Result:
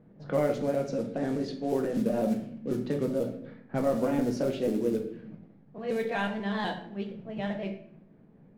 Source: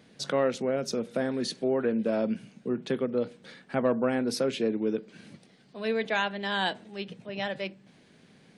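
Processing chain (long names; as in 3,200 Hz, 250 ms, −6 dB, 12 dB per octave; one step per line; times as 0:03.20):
pitch shifter gated in a rhythm +1.5 semitones, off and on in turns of 123 ms
spectral tilt −2.5 dB per octave
log-companded quantiser 6 bits
low-pass that shuts in the quiet parts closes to 1,100 Hz, open at −20.5 dBFS
rectangular room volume 120 cubic metres, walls mixed, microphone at 0.61 metres
level −5 dB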